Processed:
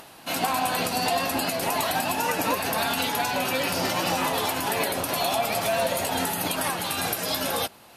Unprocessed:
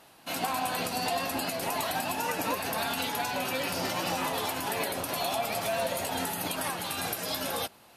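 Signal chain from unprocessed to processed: upward compressor, threshold -47 dBFS; gain +5.5 dB

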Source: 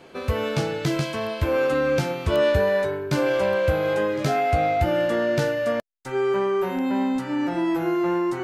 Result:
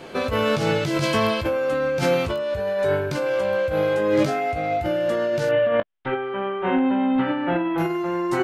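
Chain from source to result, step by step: 5.49–7.78 elliptic low-pass 3300 Hz, stop band 60 dB; negative-ratio compressor -27 dBFS, ratio -1; early reflections 19 ms -8 dB, 29 ms -18 dB; gain +4 dB

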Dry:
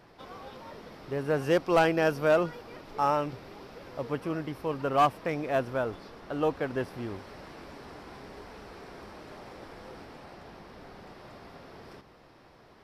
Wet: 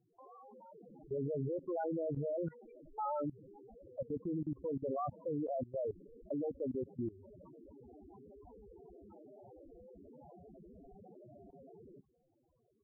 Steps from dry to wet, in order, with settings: loudest bins only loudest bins 4; level quantiser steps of 20 dB; gain +3.5 dB

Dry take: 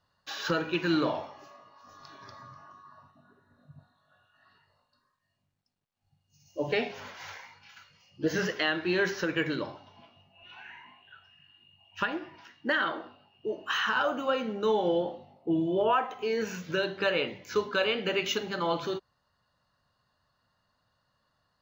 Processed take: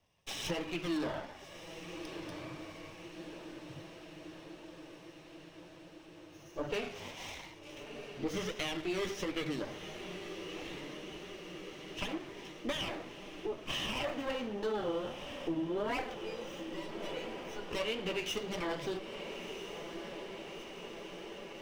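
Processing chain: minimum comb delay 0.35 ms; in parallel at -6 dB: overloaded stage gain 29 dB; 16.14–17.71 on the sum: resonator 490 Hz, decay 0.16 s, harmonics all, mix 90%; on a send: diffused feedback echo 1.326 s, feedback 71%, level -14 dB; on the sum: compressor 2:1, threshold -36 dBFS, peak gain reduction 8 dB; flange 1.5 Hz, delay 2.5 ms, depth 8.2 ms, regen -44%; gain +1.5 dB

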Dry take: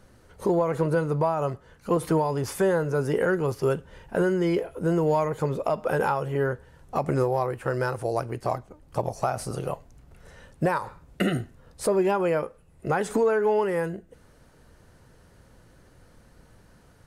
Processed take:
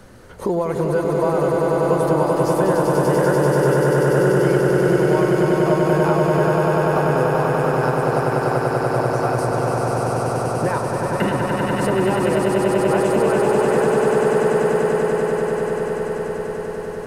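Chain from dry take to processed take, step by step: swelling echo 97 ms, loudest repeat 8, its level -4 dB; three-band squash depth 40%

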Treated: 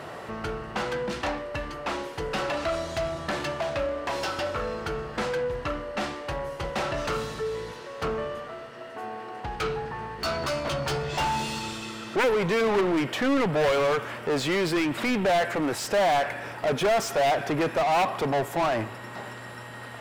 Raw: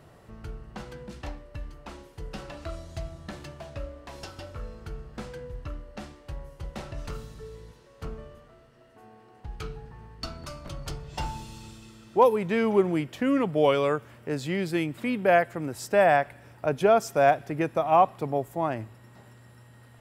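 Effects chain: wavefolder -15.5 dBFS; 10.17–11.59 doubler 14 ms -4 dB; overdrive pedal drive 29 dB, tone 2800 Hz, clips at -15.5 dBFS; gain -2 dB

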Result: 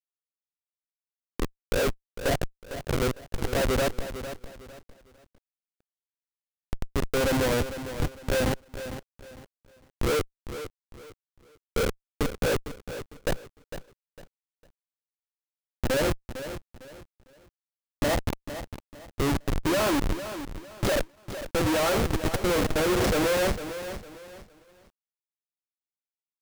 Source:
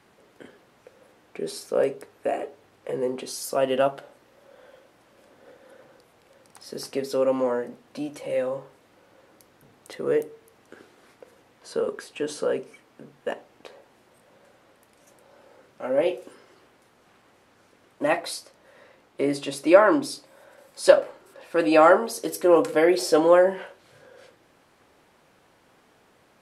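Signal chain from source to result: Schmitt trigger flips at -24.5 dBFS; lo-fi delay 0.454 s, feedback 35%, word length 9-bit, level -11 dB; gain +3 dB

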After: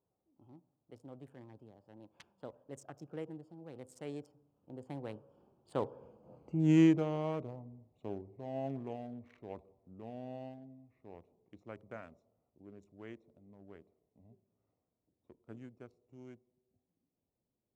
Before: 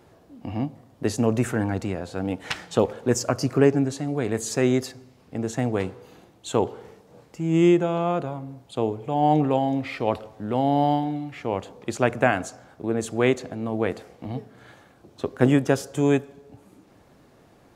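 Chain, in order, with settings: Wiener smoothing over 25 samples; Doppler pass-by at 6.52, 42 m/s, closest 16 m; gain -5 dB

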